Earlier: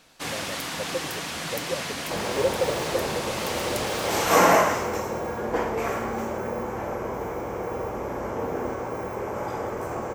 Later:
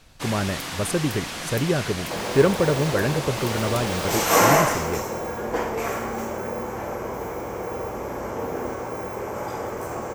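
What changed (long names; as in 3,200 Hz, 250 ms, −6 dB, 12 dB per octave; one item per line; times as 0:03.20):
speech: remove formant resonators in series e
second sound: add high-shelf EQ 4,400 Hz +7 dB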